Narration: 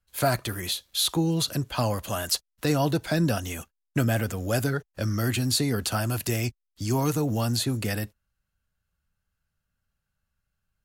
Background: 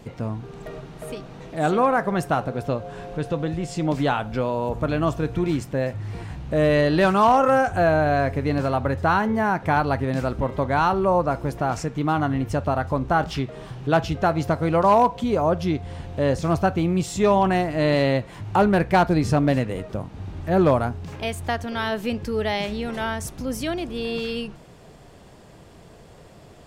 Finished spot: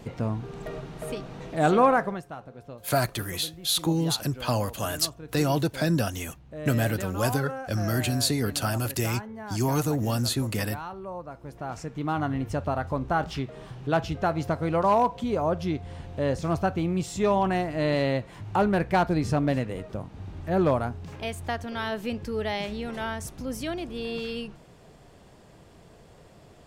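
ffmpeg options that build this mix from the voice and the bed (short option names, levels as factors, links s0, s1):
-filter_complex "[0:a]adelay=2700,volume=0.944[s0];[1:a]volume=4.22,afade=t=out:st=1.9:d=0.32:silence=0.133352,afade=t=in:st=11.37:d=0.86:silence=0.237137[s1];[s0][s1]amix=inputs=2:normalize=0"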